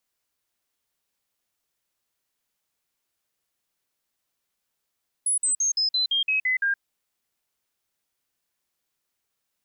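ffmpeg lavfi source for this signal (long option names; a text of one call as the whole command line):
ffmpeg -f lavfi -i "aevalsrc='0.1*clip(min(mod(t,0.17),0.12-mod(t,0.17))/0.005,0,1)*sin(2*PI*10200*pow(2,-floor(t/0.17)/3)*mod(t,0.17))':duration=1.53:sample_rate=44100" out.wav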